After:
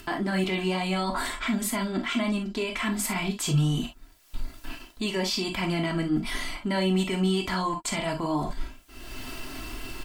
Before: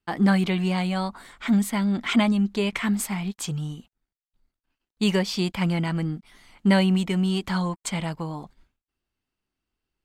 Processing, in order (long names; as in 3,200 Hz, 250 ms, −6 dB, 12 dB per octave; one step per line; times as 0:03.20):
in parallel at +1.5 dB: upward compression, threshold −23 dBFS
on the sum: comb filter 3 ms, depth 60%
reversed playback
downward compressor 6 to 1, threshold −32 dBFS, peak gain reduction 21.5 dB
reversed playback
brickwall limiter −28 dBFS, peak gain reduction 7.5 dB
reverb whose tail is shaped and stops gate 80 ms flat, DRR 3 dB
level +8 dB
MP3 112 kbit/s 44,100 Hz